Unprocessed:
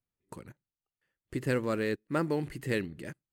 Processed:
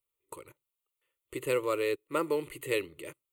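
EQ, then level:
bass and treble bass −12 dB, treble +6 dB
phaser with its sweep stopped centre 1,100 Hz, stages 8
+4.5 dB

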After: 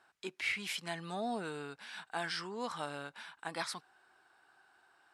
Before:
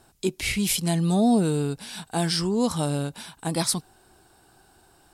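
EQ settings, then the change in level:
resonant band-pass 1,600 Hz, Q 1.5
−1.5 dB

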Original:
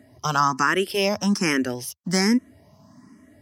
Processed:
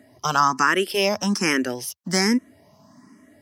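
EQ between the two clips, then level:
high-pass filter 230 Hz 6 dB per octave
+2.0 dB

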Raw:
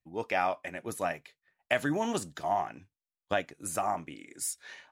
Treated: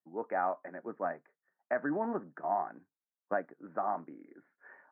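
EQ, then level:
high-pass filter 190 Hz 24 dB per octave
Butterworth low-pass 1,700 Hz 48 dB per octave
−2.5 dB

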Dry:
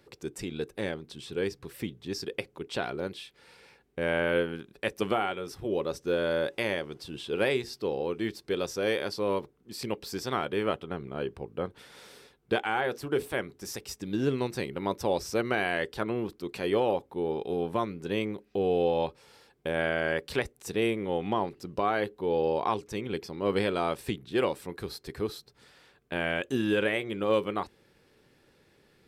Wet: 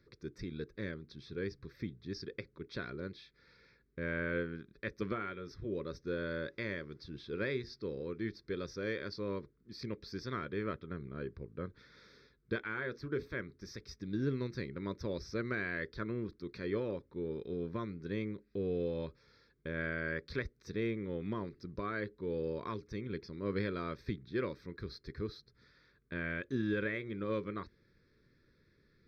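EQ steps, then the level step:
Savitzky-Golay smoothing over 15 samples
low-shelf EQ 110 Hz +8.5 dB
phaser with its sweep stopped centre 2,900 Hz, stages 6
−6.0 dB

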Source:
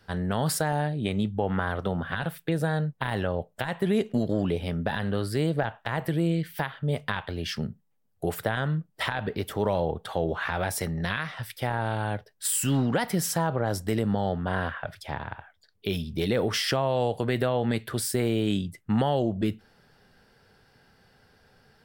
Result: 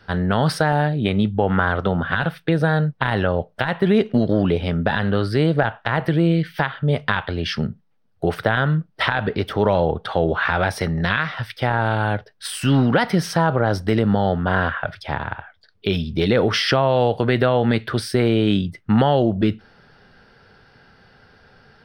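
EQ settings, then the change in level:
Savitzky-Golay smoothing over 15 samples
parametric band 1,400 Hz +4.5 dB 0.35 octaves
+8.0 dB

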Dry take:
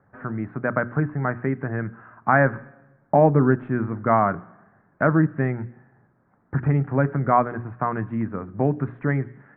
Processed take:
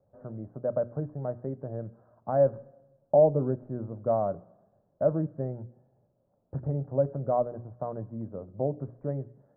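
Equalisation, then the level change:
transistor ladder low-pass 620 Hz, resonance 70%
parametric band 330 Hz −10 dB 2.9 octaves
+7.0 dB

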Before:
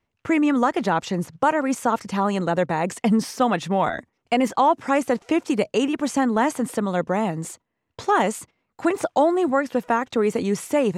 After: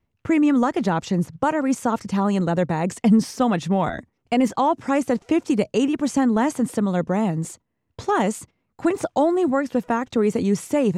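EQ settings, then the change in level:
dynamic equaliser 6,500 Hz, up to +4 dB, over −43 dBFS, Q 0.73
low-shelf EQ 310 Hz +11.5 dB
−4.0 dB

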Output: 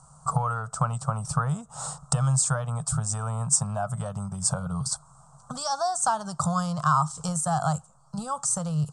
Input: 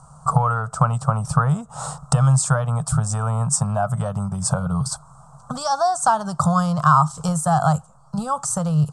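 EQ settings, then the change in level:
low-pass filter 9,500 Hz 24 dB per octave
high-shelf EQ 4,200 Hz +10 dB
−8.0 dB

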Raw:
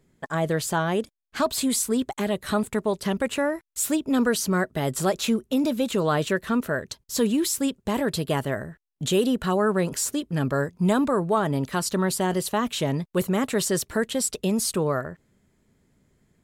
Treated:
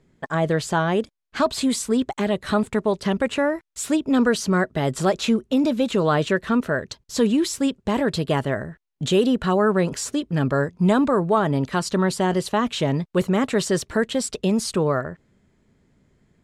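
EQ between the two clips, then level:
high-frequency loss of the air 66 metres
+3.5 dB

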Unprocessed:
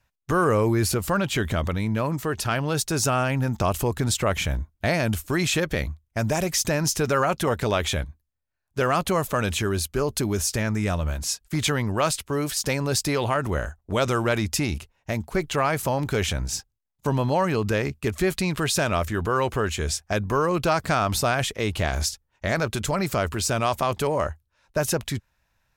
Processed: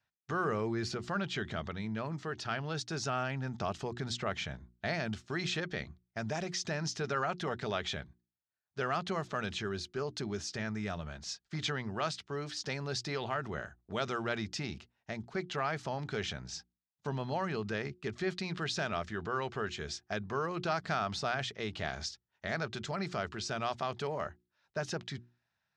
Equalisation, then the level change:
loudspeaker in its box 150–5,400 Hz, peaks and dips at 290 Hz −8 dB, 530 Hz −8 dB, 1,000 Hz −6 dB, 2,600 Hz −4 dB
mains-hum notches 60/120/180/240/300/360 Hz
notch filter 2,200 Hz, Q 28
−8.0 dB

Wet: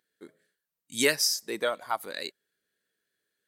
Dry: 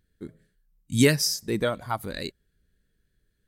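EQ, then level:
high-pass filter 500 Hz 12 dB per octave
0.0 dB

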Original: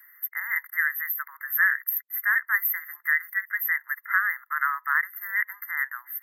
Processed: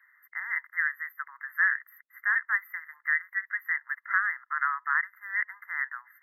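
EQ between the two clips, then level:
high-frequency loss of the air 360 metres
0.0 dB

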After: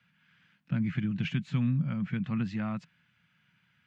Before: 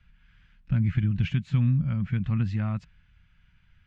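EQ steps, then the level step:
high-pass filter 150 Hz 24 dB per octave
0.0 dB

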